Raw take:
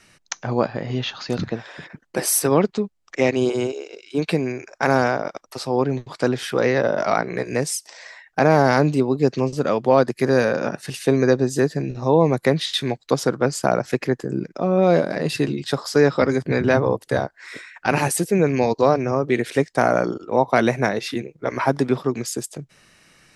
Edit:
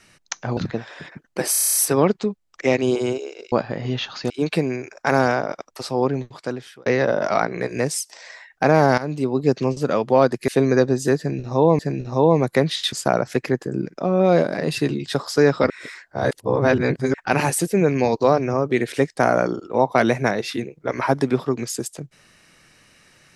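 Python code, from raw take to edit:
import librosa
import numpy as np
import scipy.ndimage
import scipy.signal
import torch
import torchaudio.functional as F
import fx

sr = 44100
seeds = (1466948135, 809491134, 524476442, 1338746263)

y = fx.edit(x, sr, fx.move(start_s=0.57, length_s=0.78, to_s=4.06),
    fx.stutter(start_s=2.29, slice_s=0.03, count=9),
    fx.fade_out_span(start_s=5.79, length_s=0.83),
    fx.fade_in_from(start_s=8.74, length_s=0.42, floor_db=-16.5),
    fx.cut(start_s=10.24, length_s=0.75),
    fx.repeat(start_s=11.69, length_s=0.61, count=2),
    fx.cut(start_s=12.83, length_s=0.68),
    fx.reverse_span(start_s=16.28, length_s=1.44), tone=tone)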